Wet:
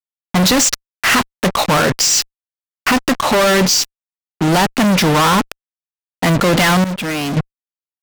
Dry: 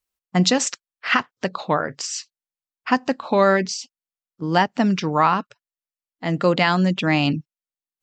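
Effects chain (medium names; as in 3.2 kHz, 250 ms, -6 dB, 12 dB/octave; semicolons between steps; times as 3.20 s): fuzz box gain 43 dB, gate -38 dBFS; 6.84–7.37 s: expander -9 dBFS; trim +2 dB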